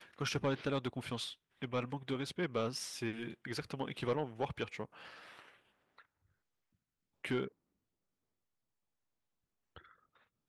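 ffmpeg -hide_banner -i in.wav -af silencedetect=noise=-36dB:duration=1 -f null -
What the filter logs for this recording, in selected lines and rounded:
silence_start: 4.85
silence_end: 7.25 | silence_duration: 2.40
silence_start: 7.45
silence_end: 10.49 | silence_duration: 3.04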